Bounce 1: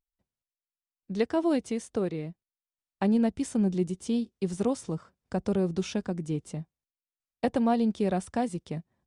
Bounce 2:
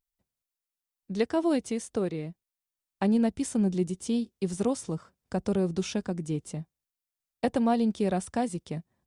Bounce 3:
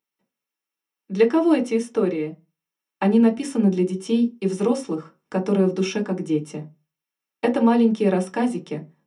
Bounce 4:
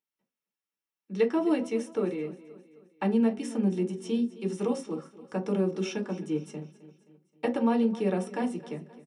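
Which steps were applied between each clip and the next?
high shelf 6500 Hz +6.5 dB
reverb RT60 0.25 s, pre-delay 3 ms, DRR 2.5 dB
feedback echo 0.263 s, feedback 48%, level -17.5 dB; gain -8 dB

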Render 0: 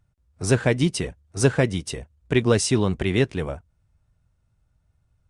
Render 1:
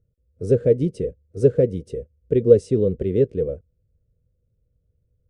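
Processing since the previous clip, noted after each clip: EQ curve 340 Hz 0 dB, 490 Hz +13 dB, 840 Hz -28 dB, 1300 Hz -19 dB; gain -1.5 dB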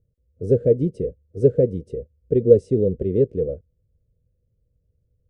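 EQ curve 640 Hz 0 dB, 990 Hz -14 dB, 1400 Hz -10 dB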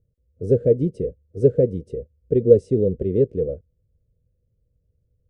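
nothing audible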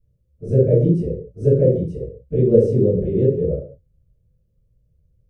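reverb, pre-delay 4 ms, DRR -10.5 dB; gain -14.5 dB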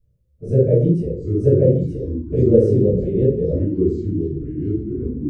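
echoes that change speed 0.608 s, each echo -4 st, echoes 3, each echo -6 dB

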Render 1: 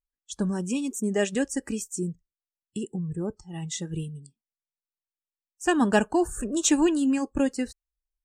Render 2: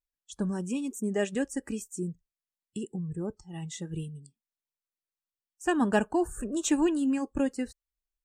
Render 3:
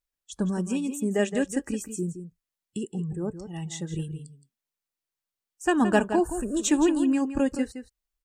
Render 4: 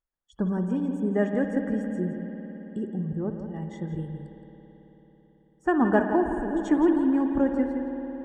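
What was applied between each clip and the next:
dynamic EQ 5200 Hz, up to -6 dB, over -47 dBFS, Q 0.85; gain -3.5 dB
outdoor echo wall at 29 m, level -10 dB; gain +3.5 dB
polynomial smoothing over 41 samples; on a send at -5 dB: reverb RT60 4.4 s, pre-delay 55 ms

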